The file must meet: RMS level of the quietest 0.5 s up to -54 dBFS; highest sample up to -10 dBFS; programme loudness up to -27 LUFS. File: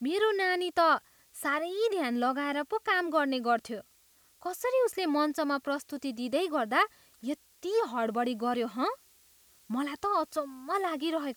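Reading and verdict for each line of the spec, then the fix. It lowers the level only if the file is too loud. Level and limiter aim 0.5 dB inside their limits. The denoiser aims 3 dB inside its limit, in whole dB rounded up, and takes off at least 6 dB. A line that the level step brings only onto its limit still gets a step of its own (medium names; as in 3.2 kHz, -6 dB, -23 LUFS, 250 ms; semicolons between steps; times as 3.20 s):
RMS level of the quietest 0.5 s -64 dBFS: pass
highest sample -13.5 dBFS: pass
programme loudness -30.5 LUFS: pass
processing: none needed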